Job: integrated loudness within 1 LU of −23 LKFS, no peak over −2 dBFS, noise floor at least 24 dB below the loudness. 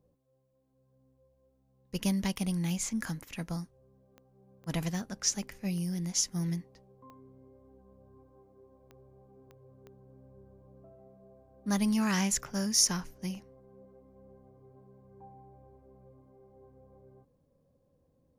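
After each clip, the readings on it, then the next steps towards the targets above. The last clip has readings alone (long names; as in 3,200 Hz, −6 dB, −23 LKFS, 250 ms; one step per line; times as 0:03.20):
number of clicks 7; integrated loudness −31.5 LKFS; sample peak −11.5 dBFS; target loudness −23.0 LKFS
→ click removal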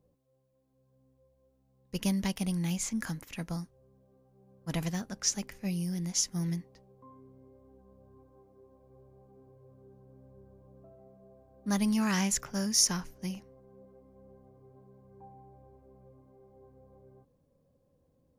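number of clicks 0; integrated loudness −31.5 LKFS; sample peak −11.5 dBFS; target loudness −23.0 LKFS
→ level +8.5 dB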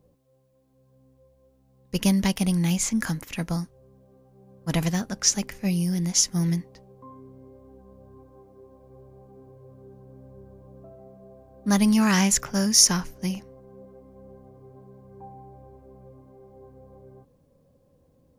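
integrated loudness −23.0 LKFS; sample peak −3.0 dBFS; background noise floor −63 dBFS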